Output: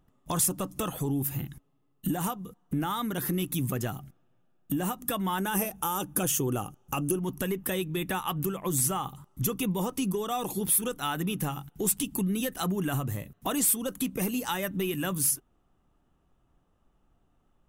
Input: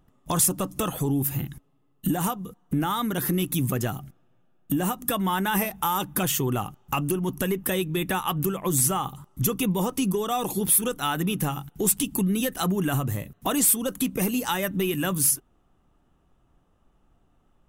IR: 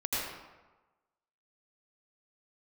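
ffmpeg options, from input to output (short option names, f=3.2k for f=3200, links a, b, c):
-filter_complex "[0:a]asettb=1/sr,asplit=3[a][b][c];[a]atrim=end=5.384[d];[b]atrim=start=5.38:end=7.19,asetpts=PTS-STARTPTS,afade=t=in:d=0.004:c=qsin,afade=t=out:st=1.806:d=0.004:c=qsin,equalizer=f=315:t=o:w=0.33:g=5,equalizer=f=500:t=o:w=0.33:g=5,equalizer=f=1k:t=o:w=0.33:g=-4,equalizer=f=2k:t=o:w=0.33:g=-7,equalizer=f=4k:t=o:w=0.33:g=-7,equalizer=f=6.3k:t=o:w=0.33:g=6,equalizer=f=10k:t=o:w=0.33:g=7[e];[c]atrim=start=7.186[f];[d][e]acrossfade=d=0.004:c1=hsin:c2=qsin[g];[g][f]acrossfade=d=0.004:c1=qsin:c2=hsin,volume=-4.5dB"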